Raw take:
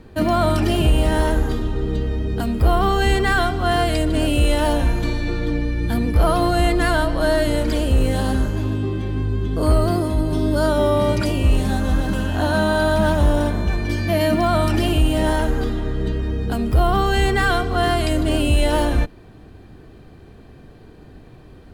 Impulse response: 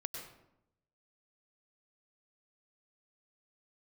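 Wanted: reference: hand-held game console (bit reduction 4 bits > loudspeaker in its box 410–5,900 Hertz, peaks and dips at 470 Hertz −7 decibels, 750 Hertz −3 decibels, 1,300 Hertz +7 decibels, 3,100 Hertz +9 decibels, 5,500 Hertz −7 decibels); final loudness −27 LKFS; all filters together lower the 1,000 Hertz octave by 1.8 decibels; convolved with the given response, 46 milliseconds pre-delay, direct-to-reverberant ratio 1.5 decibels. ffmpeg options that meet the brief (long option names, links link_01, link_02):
-filter_complex "[0:a]equalizer=frequency=1000:width_type=o:gain=-3.5,asplit=2[link_01][link_02];[1:a]atrim=start_sample=2205,adelay=46[link_03];[link_02][link_03]afir=irnorm=-1:irlink=0,volume=-1dB[link_04];[link_01][link_04]amix=inputs=2:normalize=0,acrusher=bits=3:mix=0:aa=0.000001,highpass=410,equalizer=frequency=470:width_type=q:width=4:gain=-7,equalizer=frequency=750:width_type=q:width=4:gain=-3,equalizer=frequency=1300:width_type=q:width=4:gain=7,equalizer=frequency=3100:width_type=q:width=4:gain=9,equalizer=frequency=5500:width_type=q:width=4:gain=-7,lowpass=frequency=5900:width=0.5412,lowpass=frequency=5900:width=1.3066,volume=-7dB"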